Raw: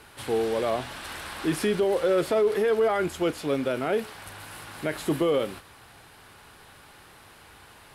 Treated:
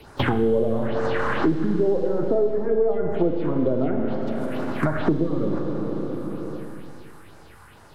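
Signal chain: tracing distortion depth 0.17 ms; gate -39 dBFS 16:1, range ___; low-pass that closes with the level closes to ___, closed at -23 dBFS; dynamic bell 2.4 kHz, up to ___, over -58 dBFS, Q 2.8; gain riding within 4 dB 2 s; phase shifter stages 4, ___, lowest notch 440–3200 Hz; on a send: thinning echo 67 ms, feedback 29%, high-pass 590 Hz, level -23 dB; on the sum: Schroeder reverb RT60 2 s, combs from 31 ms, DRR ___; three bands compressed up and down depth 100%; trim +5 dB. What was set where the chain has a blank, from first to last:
-30 dB, 560 Hz, -4 dB, 2.2 Hz, 3.5 dB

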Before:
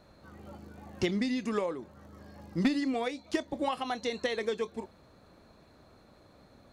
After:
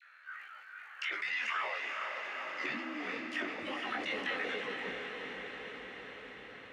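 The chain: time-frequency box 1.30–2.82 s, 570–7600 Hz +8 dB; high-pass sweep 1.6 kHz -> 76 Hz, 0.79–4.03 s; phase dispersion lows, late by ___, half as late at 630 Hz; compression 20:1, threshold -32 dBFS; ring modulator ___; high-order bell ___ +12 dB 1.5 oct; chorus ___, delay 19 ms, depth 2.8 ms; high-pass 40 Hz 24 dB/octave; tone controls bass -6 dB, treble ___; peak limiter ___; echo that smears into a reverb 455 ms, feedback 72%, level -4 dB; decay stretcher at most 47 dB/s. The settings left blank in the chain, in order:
104 ms, 37 Hz, 2 kHz, 2.4 Hz, -5 dB, -26.5 dBFS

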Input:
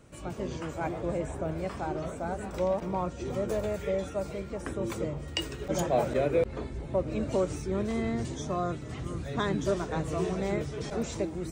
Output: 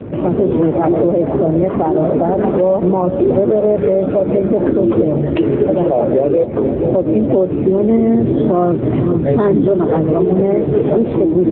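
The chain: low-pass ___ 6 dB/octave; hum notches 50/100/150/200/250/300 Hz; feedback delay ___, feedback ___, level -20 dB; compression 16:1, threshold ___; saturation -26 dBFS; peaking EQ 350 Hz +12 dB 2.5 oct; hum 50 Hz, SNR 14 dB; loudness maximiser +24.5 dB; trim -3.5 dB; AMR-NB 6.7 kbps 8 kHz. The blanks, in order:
1.2 kHz, 468 ms, 50%, -36 dBFS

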